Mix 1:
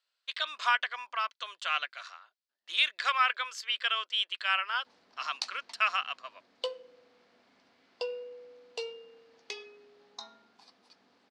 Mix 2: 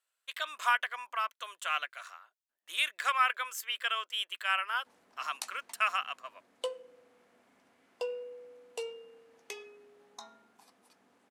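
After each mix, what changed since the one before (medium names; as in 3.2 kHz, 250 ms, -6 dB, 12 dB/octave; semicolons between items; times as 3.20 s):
master: remove resonant low-pass 4.6 kHz, resonance Q 3.2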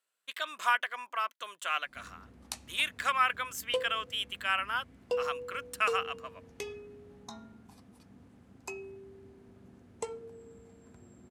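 background: entry -2.90 s; master: remove high-pass 570 Hz 12 dB/octave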